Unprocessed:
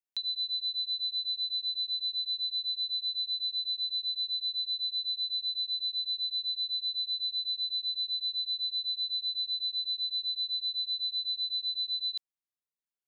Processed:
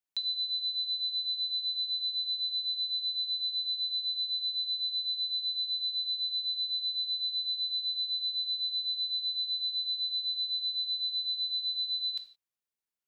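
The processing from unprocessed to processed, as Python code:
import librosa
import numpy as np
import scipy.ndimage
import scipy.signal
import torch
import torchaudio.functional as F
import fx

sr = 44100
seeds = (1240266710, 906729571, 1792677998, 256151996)

y = fx.rev_gated(x, sr, seeds[0], gate_ms=190, shape='falling', drr_db=7.0)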